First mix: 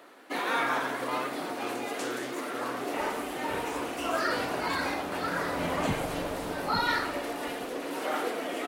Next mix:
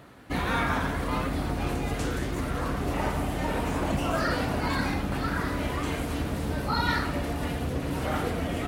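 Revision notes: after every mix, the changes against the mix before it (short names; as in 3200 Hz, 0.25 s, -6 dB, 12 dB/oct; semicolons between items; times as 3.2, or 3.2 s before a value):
first sound: remove HPF 310 Hz 24 dB/oct; second sound: entry -1.95 s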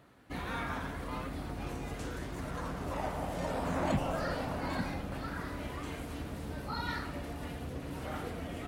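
speech -9.5 dB; first sound -10.5 dB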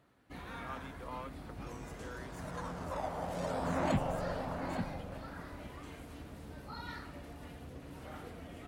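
first sound -8.0 dB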